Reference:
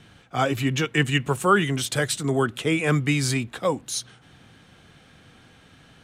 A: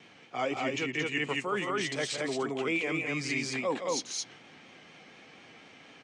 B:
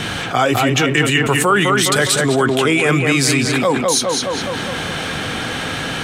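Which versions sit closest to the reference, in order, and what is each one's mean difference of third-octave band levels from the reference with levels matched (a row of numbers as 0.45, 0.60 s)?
A, B; 8.5, 12.0 dB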